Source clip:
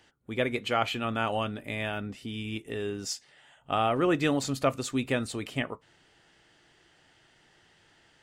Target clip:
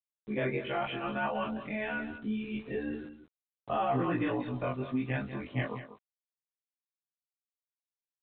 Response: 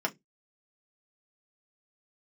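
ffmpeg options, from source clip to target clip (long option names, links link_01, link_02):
-filter_complex "[0:a]afftfilt=real='re':imag='-im':win_size=2048:overlap=0.75,agate=range=-30dB:threshold=-55dB:ratio=16:detection=peak,lowpass=2000,bandreject=frequency=1300:width=7.8,afftdn=noise_reduction=35:noise_floor=-53,flanger=delay=15.5:depth=5.7:speed=0.74,alimiter=level_in=5.5dB:limit=-24dB:level=0:latency=1:release=55,volume=-5.5dB,aresample=8000,aeval=exprs='val(0)*gte(abs(val(0)),0.001)':channel_layout=same,aresample=44100,adynamicequalizer=threshold=0.00224:dfrequency=470:dqfactor=1.1:tfrequency=470:tqfactor=1.1:attack=5:release=100:ratio=0.375:range=3:mode=cutabove:tftype=bell,asplit=2[link_01][link_02];[link_02]aecho=0:1:192:0.251[link_03];[link_01][link_03]amix=inputs=2:normalize=0,volume=8.5dB"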